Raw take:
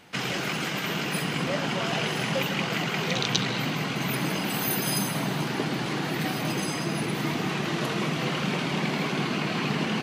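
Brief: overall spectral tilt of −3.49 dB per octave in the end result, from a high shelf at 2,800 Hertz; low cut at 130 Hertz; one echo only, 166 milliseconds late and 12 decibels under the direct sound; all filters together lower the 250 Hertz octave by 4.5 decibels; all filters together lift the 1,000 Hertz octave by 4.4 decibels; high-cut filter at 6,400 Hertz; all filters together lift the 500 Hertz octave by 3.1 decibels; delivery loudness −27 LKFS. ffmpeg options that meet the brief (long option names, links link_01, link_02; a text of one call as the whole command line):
ffmpeg -i in.wav -af "highpass=130,lowpass=6400,equalizer=frequency=250:width_type=o:gain=-7.5,equalizer=frequency=500:width_type=o:gain=5,equalizer=frequency=1000:width_type=o:gain=4,highshelf=frequency=2800:gain=3.5,aecho=1:1:166:0.251,volume=-1dB" out.wav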